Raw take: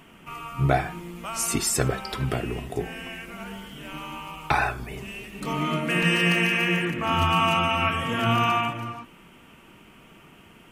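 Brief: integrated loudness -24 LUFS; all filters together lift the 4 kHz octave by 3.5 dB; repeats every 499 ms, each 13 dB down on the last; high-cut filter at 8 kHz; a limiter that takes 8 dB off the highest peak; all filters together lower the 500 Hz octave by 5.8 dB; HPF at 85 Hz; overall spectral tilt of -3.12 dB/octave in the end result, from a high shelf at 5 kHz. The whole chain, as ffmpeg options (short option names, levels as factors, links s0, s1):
-af "highpass=85,lowpass=8000,equalizer=f=500:t=o:g=-9,equalizer=f=4000:t=o:g=4.5,highshelf=f=5000:g=4,alimiter=limit=0.178:level=0:latency=1,aecho=1:1:499|998|1497:0.224|0.0493|0.0108,volume=1.33"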